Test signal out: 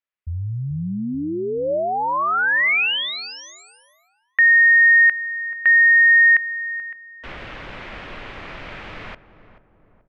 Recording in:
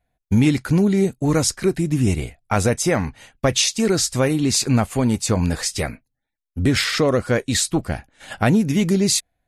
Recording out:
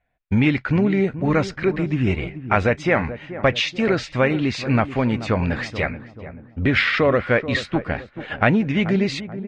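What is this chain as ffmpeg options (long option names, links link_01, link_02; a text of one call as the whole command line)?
ffmpeg -i in.wav -filter_complex "[0:a]equalizer=frequency=580:width_type=o:width=0.29:gain=3.5,asplit=2[link_01][link_02];[link_02]adelay=433,lowpass=frequency=950:poles=1,volume=-12dB,asplit=2[link_03][link_04];[link_04]adelay=433,lowpass=frequency=950:poles=1,volume=0.5,asplit=2[link_05][link_06];[link_06]adelay=433,lowpass=frequency=950:poles=1,volume=0.5,asplit=2[link_07][link_08];[link_08]adelay=433,lowpass=frequency=950:poles=1,volume=0.5,asplit=2[link_09][link_10];[link_10]adelay=433,lowpass=frequency=950:poles=1,volume=0.5[link_11];[link_01][link_03][link_05][link_07][link_09][link_11]amix=inputs=6:normalize=0,crystalizer=i=9:c=0,lowpass=frequency=2400:width=0.5412,lowpass=frequency=2400:width=1.3066,volume=-2.5dB" out.wav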